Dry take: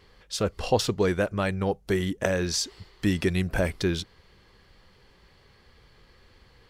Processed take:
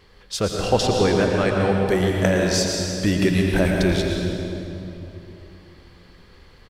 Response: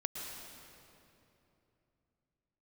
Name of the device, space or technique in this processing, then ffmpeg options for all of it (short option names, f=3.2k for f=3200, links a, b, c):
stairwell: -filter_complex "[0:a]asettb=1/sr,asplit=3[a][b][c];[a]atrim=end=0.684[d];[b]atrim=start=0.68:end=1.54,asetpts=PTS-STARTPTS,afade=t=in:d=0.004:c=qsin,afade=t=out:st=0.856:d=0.004:c=qsin,lowpass=9k[e];[c]atrim=start=1.536[f];[d][e]acrossfade=d=0.004:c1=hsin:c2=qsin[g];[g][f]acrossfade=d=0.004:c1=qsin:c2=hsin,aecho=1:1:86:0.15[h];[1:a]atrim=start_sample=2205[i];[h][i]afir=irnorm=-1:irlink=0,volume=5dB"